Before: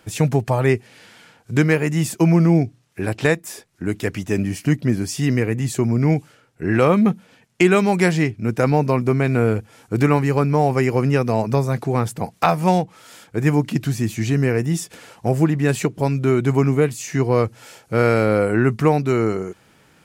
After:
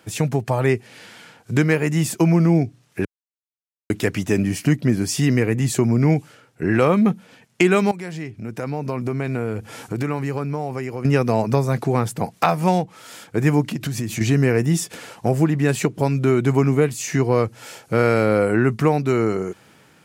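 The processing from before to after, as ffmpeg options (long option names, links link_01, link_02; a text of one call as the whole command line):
ffmpeg -i in.wav -filter_complex "[0:a]asettb=1/sr,asplit=3[link_01][link_02][link_03];[link_01]atrim=end=7.914[link_04];[link_02]atrim=start=7.91:end=11.05,asetpts=PTS-STARTPTS,afade=type=in:duration=0.004:curve=qsin,afade=type=out:start_time=3.136:duration=0.004:curve=qsin,acompressor=threshold=-39dB:ratio=2.5:attack=3.2:release=140:knee=1:detection=peak[link_05];[link_03]atrim=start=11.046[link_06];[link_04][link_05]acrossfade=duration=0.004:curve1=hsin:curve2=qsin[link_07];[link_07][link_06]acrossfade=duration=0.004:curve1=qsin:curve2=hsin,asettb=1/sr,asplit=3[link_08][link_09][link_10];[link_08]atrim=end=13.634[link_11];[link_09]atrim=start=13.63:end=14.21,asetpts=PTS-STARTPTS,afade=type=in:duration=0.004:curve=qsin,afade=type=out:start_time=0.576:duration=0.004:curve=qsin,acompressor=threshold=-25dB:ratio=6:attack=3.2:release=140:knee=1:detection=peak[link_12];[link_10]atrim=start=14.206[link_13];[link_11][link_12]acrossfade=duration=0.004:curve1=hsin:curve2=qsin[link_14];[link_14][link_13]acrossfade=duration=0.004:curve1=qsin:curve2=hsin,asplit=3[link_15][link_16][link_17];[link_15]atrim=end=3.05,asetpts=PTS-STARTPTS,afade=type=out:start_time=3.046:duration=0.004:curve=hsin[link_18];[link_16]atrim=start=3.05:end=3.9,asetpts=PTS-STARTPTS,volume=0[link_19];[link_17]atrim=start=3.9,asetpts=PTS-STARTPTS,afade=type=in:duration=0.004:curve=hsin[link_20];[link_18][link_19][link_20]concat=n=3:v=0:a=1,dynaudnorm=framelen=410:gausssize=3:maxgain=11.5dB,highpass=87,acompressor=threshold=-21dB:ratio=1.5" out.wav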